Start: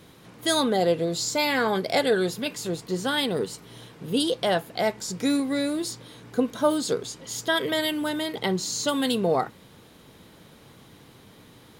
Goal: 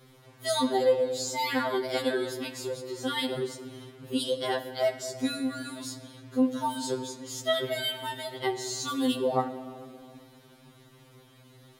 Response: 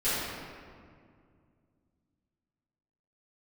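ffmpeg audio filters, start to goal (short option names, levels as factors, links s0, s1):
-filter_complex "[0:a]asplit=2[s0][s1];[1:a]atrim=start_sample=2205,adelay=50[s2];[s1][s2]afir=irnorm=-1:irlink=0,volume=0.0794[s3];[s0][s3]amix=inputs=2:normalize=0,afftfilt=real='re*2.45*eq(mod(b,6),0)':imag='im*2.45*eq(mod(b,6),0)':win_size=2048:overlap=0.75,volume=0.708"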